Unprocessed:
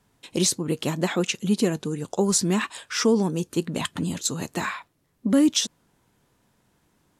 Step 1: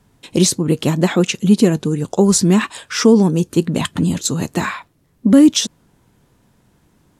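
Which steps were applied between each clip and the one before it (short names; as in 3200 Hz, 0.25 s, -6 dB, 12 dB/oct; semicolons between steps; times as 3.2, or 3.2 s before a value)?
low shelf 360 Hz +7 dB; gain +5.5 dB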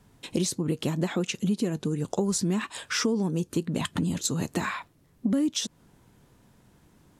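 compressor 4:1, threshold -23 dBFS, peak gain reduction 14.5 dB; gain -2.5 dB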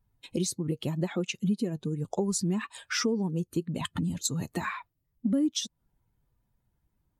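per-bin expansion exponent 1.5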